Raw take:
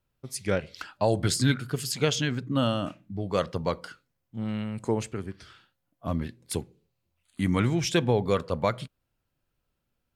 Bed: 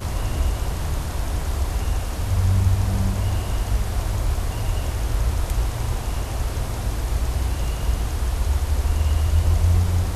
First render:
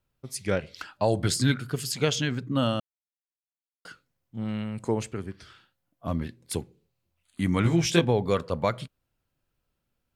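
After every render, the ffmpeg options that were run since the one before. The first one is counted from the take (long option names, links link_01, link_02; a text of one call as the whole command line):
ffmpeg -i in.wav -filter_complex "[0:a]asettb=1/sr,asplit=3[link_01][link_02][link_03];[link_01]atrim=end=7.634[link_04];[link_02]atrim=start=7.63:end=8.05,asetpts=PTS-STARTPTS,afade=type=in:duration=0.004:curve=qsin,afade=type=out:start_time=0.416:duration=0.004:curve=qsin,asplit=2[link_05][link_06];[link_06]adelay=18,volume=-2dB[link_07];[link_05][link_07]amix=inputs=2:normalize=0,atrim=end_sample=18522[link_08];[link_03]atrim=start=8.046[link_09];[link_04][link_08]acrossfade=duration=0.004:curve1=hsin:curve2=qsin[link_10];[link_10][link_09]acrossfade=duration=0.004:curve1=qsin:curve2=hsin,asplit=3[link_11][link_12][link_13];[link_11]atrim=end=2.8,asetpts=PTS-STARTPTS,afade=type=out:start_time=2.796:duration=0.004:curve=hsin[link_14];[link_12]atrim=start=2.8:end=3.85,asetpts=PTS-STARTPTS,volume=0[link_15];[link_13]atrim=start=3.85,asetpts=PTS-STARTPTS,afade=type=in:duration=0.004:curve=hsin[link_16];[link_14][link_15][link_16]concat=n=3:v=0:a=1" out.wav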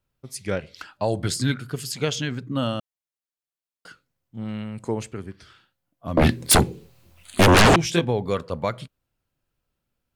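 ffmpeg -i in.wav -filter_complex "[0:a]asettb=1/sr,asplit=3[link_01][link_02][link_03];[link_01]atrim=end=6.174[link_04];[link_02]atrim=start=6.17:end=7.76,asetpts=PTS-STARTPTS,afade=type=in:duration=0.004:curve=qsin,afade=type=out:start_time=1.586:duration=0.004:curve=qsin,aeval=exprs='0.316*sin(PI/2*8.91*val(0)/0.316)':channel_layout=same[link_05];[link_03]atrim=start=7.756[link_06];[link_04][link_05]acrossfade=duration=0.004:curve1=hsin:curve2=qsin[link_07];[link_07][link_06]acrossfade=duration=0.004:curve1=qsin:curve2=hsin" out.wav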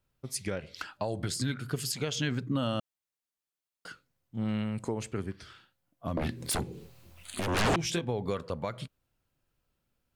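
ffmpeg -i in.wav -af "acompressor=threshold=-24dB:ratio=8,alimiter=limit=-20.5dB:level=0:latency=1:release=300" out.wav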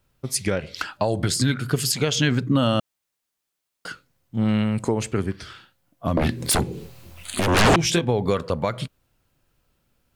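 ffmpeg -i in.wav -af "volume=10.5dB" out.wav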